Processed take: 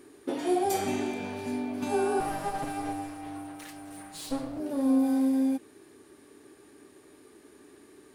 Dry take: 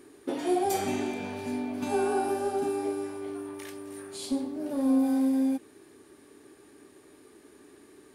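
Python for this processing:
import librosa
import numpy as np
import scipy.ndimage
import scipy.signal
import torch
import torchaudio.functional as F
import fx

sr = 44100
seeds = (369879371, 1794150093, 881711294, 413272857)

y = fx.lower_of_two(x, sr, delay_ms=6.4, at=(2.2, 4.6))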